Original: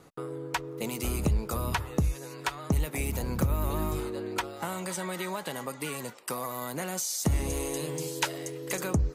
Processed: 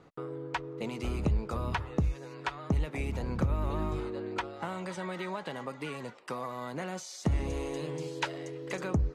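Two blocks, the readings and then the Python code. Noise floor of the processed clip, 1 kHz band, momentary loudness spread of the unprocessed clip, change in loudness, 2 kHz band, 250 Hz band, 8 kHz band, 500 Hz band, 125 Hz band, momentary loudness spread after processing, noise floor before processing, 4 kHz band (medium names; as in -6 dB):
-48 dBFS, -2.5 dB, 7 LU, -3.0 dB, -3.0 dB, -2.0 dB, -14.5 dB, -2.0 dB, -2.0 dB, 8 LU, -44 dBFS, -6.0 dB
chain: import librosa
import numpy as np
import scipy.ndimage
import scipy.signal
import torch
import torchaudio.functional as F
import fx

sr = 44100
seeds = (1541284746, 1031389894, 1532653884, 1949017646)

y = scipy.signal.sosfilt(scipy.signal.bessel(2, 3200.0, 'lowpass', norm='mag', fs=sr, output='sos'), x)
y = F.gain(torch.from_numpy(y), -2.0).numpy()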